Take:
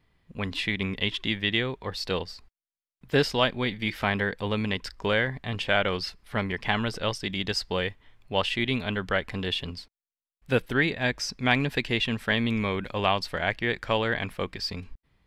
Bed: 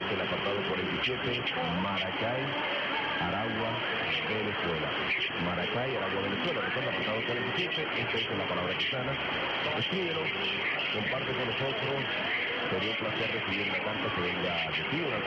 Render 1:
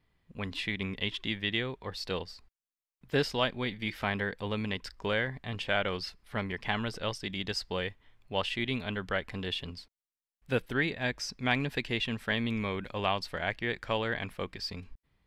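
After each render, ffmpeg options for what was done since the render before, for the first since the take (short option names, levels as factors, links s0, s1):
-af "volume=0.531"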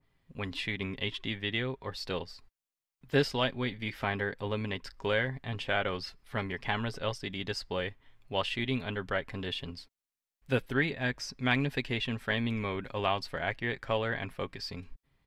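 -af "aecho=1:1:7.4:0.35,adynamicequalizer=threshold=0.00562:dfrequency=2100:dqfactor=0.7:tfrequency=2100:tqfactor=0.7:attack=5:release=100:ratio=0.375:range=2:mode=cutabove:tftype=highshelf"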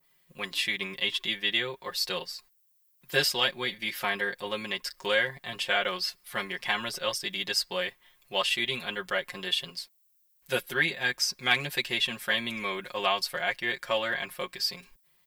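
-af "aemphasis=mode=production:type=riaa,aecho=1:1:5.6:0.94"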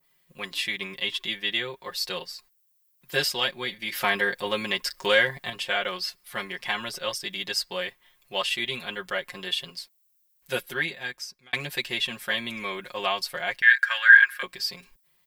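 -filter_complex "[0:a]asettb=1/sr,asplit=3[s0][s1][s2];[s0]atrim=end=3.924[s3];[s1]atrim=start=3.92:end=5.5,asetpts=PTS-STARTPTS,afade=t=in:d=0.004:c=qsin,afade=t=out:st=1.576:d=0.004:c=qsin,acontrast=38[s4];[s2]atrim=start=5.496[s5];[s3][s4]acrossfade=d=0.004:c1=hsin:c2=qsin[s6];[s6][s5]acrossfade=d=0.004:c1=qsin:c2=hsin,asettb=1/sr,asplit=3[s7][s8][s9];[s7]atrim=end=13.624[s10];[s8]atrim=start=13.62:end=14.43,asetpts=PTS-STARTPTS,afade=t=in:d=0.004:c=qsin,afade=t=out:st=0.806:d=0.004:c=qsin,highpass=f=1600:t=q:w=15[s11];[s9]atrim=start=14.426[s12];[s10][s11]acrossfade=d=0.004:c1=hsin:c2=qsin[s13];[s13][s12]acrossfade=d=0.004:c1=qsin:c2=hsin,asplit=2[s14][s15];[s14]atrim=end=11.53,asetpts=PTS-STARTPTS,afade=t=out:st=10.65:d=0.88[s16];[s15]atrim=start=11.53,asetpts=PTS-STARTPTS,afade=t=in:d=0.004:c=hsin[s17];[s16][s17]concat=n=2:v=0:a=1"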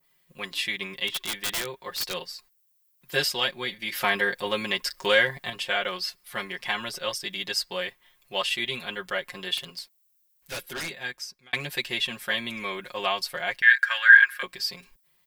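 -filter_complex "[0:a]asplit=3[s0][s1][s2];[s0]afade=t=out:st=1.07:d=0.02[s3];[s1]aeval=exprs='(mod(11.9*val(0)+1,2)-1)/11.9':c=same,afade=t=in:st=1.07:d=0.02,afade=t=out:st=2.15:d=0.02[s4];[s2]afade=t=in:st=2.15:d=0.02[s5];[s3][s4][s5]amix=inputs=3:normalize=0,asettb=1/sr,asplit=3[s6][s7][s8];[s6]atrim=end=9.574[s9];[s7]atrim=start=9.57:end=10.93,asetpts=PTS-STARTPTS,afade=t=in:d=0.004:c=qsin,afade=t=out:st=1.356:d=0.004:c=qsin,aeval=exprs='0.0422*(abs(mod(val(0)/0.0422+3,4)-2)-1)':c=same[s10];[s8]atrim=start=10.926[s11];[s9][s10]acrossfade=d=0.004:c1=hsin:c2=qsin[s12];[s12][s11]acrossfade=d=0.004:c1=qsin:c2=hsin"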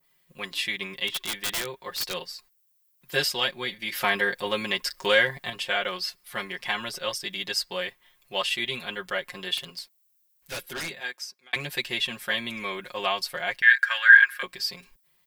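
-filter_complex "[0:a]asettb=1/sr,asplit=3[s0][s1][s2];[s0]atrim=end=11.004[s3];[s1]atrim=start=11:end=11.56,asetpts=PTS-STARTPTS,afade=t=in:d=0.004:c=qsin,afade=t=out:st=0.556:d=0.004:c=qsin,highpass=330[s4];[s2]atrim=start=11.556[s5];[s3][s4]acrossfade=d=0.004:c1=hsin:c2=qsin[s6];[s6][s5]acrossfade=d=0.004:c1=qsin:c2=hsin"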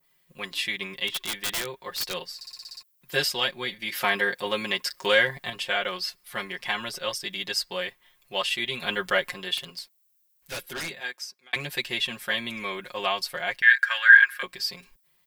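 -filter_complex "[0:a]asettb=1/sr,asplit=3[s0][s1][s2];[s0]atrim=end=3.914[s3];[s1]atrim=start=3.91:end=5.13,asetpts=PTS-STARTPTS,afade=t=in:d=0.004:c=qsin,afade=t=out:st=1.216:d=0.004:c=qsin,highpass=f=100:p=1[s4];[s2]atrim=start=5.126[s5];[s3][s4]acrossfade=d=0.004:c1=hsin:c2=qsin[s6];[s6][s5]acrossfade=d=0.004:c1=qsin:c2=hsin,asettb=1/sr,asplit=3[s7][s8][s9];[s7]atrim=end=8.824[s10];[s8]atrim=start=8.82:end=9.34,asetpts=PTS-STARTPTS,afade=t=in:d=0.004:c=qsin,afade=t=out:st=0.516:d=0.004:c=qsin,acontrast=51[s11];[s9]atrim=start=9.336[s12];[s10][s11]acrossfade=d=0.004:c1=hsin:c2=qsin[s13];[s13][s12]acrossfade=d=0.004:c1=qsin:c2=hsin,asplit=9[s14][s15][s16][s17][s18][s19][s20][s21][s22];[s14]atrim=end=2.412[s23];[s15]atrim=start=2.348:end=2.412[s24];[s16]atrim=start=2.348:end=2.412[s25];[s17]atrim=start=2.348:end=2.412[s26];[s18]atrim=start=2.348:end=2.412[s27];[s19]atrim=start=2.348:end=2.412[s28];[s20]atrim=start=2.348:end=2.412[s29];[s21]atrim=start=2.348:end=2.412[s30];[s22]atrim=start=2.828[s31];[s23][s24]acrossfade=d=0.004:c1=hsin:c2=hsin[s32];[s32][s25]acrossfade=d=0.004:c1=hsin:c2=hsin[s33];[s33][s26]acrossfade=d=0.004:c1=hsin:c2=hsin[s34];[s34][s27]acrossfade=d=0.004:c1=hsin:c2=hsin[s35];[s35][s28]acrossfade=d=0.004:c1=hsin:c2=hsin[s36];[s36][s29]acrossfade=d=0.004:c1=hsin:c2=hsin[s37];[s37][s30]acrossfade=d=0.004:c1=hsin:c2=hsin[s38];[s38][s31]acrossfade=d=0.004:c1=hsin:c2=hsin"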